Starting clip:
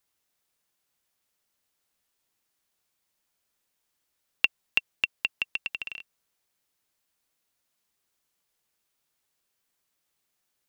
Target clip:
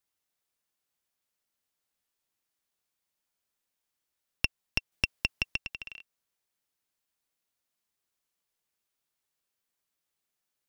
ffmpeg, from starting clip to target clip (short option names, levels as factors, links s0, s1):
-filter_complex "[0:a]aeval=exprs='0.596*(cos(1*acos(clip(val(0)/0.596,-1,1)))-cos(1*PI/2))+0.168*(cos(4*acos(clip(val(0)/0.596,-1,1)))-cos(4*PI/2))':c=same,asettb=1/sr,asplit=3[s0][s1][s2];[s0]atrim=end=4.924[s3];[s1]atrim=start=4.92:end=5.58,asetpts=PTS-STARTPTS,afade=t=in:d=0.004:c=qsin,afade=t=out:st=0.656:d=0.004:c=qsin,acontrast=36[s4];[s2]atrim=start=5.576[s5];[s3][s4]acrossfade=d=0.004:c1=hsin:c2=qsin[s6];[s6][s5]acrossfade=d=0.004:c1=qsin:c2=hsin,volume=0.473"